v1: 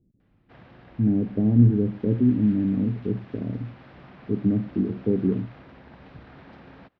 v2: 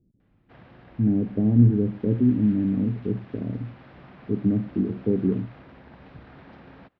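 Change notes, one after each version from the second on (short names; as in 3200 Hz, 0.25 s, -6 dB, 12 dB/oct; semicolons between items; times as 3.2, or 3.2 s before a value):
master: add air absorption 62 m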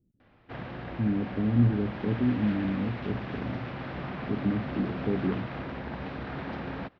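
speech -6.0 dB; background +11.5 dB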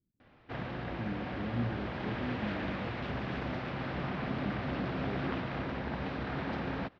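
speech -12.0 dB; master: remove air absorption 62 m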